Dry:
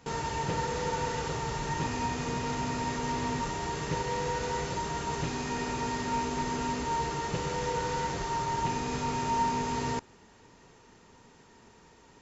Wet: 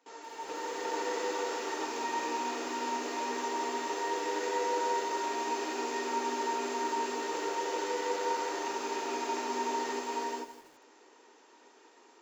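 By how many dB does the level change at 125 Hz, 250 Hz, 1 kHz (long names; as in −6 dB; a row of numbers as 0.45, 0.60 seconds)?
below −30 dB, −5.0 dB, −1.5 dB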